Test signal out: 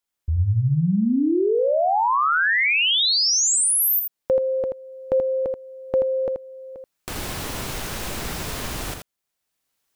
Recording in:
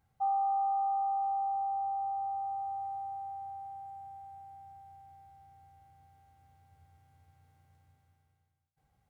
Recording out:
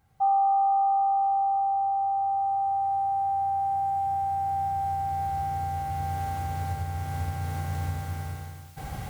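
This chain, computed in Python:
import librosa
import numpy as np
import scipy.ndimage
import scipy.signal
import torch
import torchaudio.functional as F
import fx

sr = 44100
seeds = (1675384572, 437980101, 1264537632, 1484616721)

p1 = fx.recorder_agc(x, sr, target_db=-30.5, rise_db_per_s=11.0, max_gain_db=30)
p2 = p1 + fx.echo_single(p1, sr, ms=81, db=-6.0, dry=0)
y = p2 * librosa.db_to_amplitude(7.5)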